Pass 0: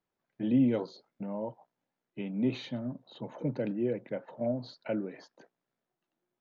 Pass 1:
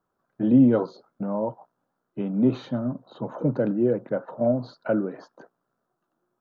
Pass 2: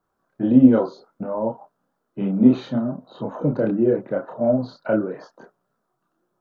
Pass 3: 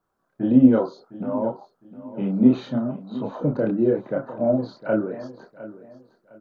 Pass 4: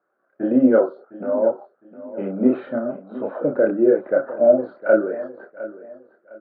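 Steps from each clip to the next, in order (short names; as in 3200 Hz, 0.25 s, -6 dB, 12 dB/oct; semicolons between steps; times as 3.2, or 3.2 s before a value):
resonant high shelf 1700 Hz -8 dB, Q 3; notch 880 Hz, Q 19; gain +8.5 dB
chorus voices 4, 0.56 Hz, delay 29 ms, depth 2.8 ms; gain +6.5 dB
feedback echo 0.708 s, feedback 29%, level -16 dB; gain -1.5 dB
speaker cabinet 330–2200 Hz, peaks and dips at 360 Hz +4 dB, 570 Hz +7 dB, 970 Hz -8 dB, 1500 Hz +7 dB; gain +3 dB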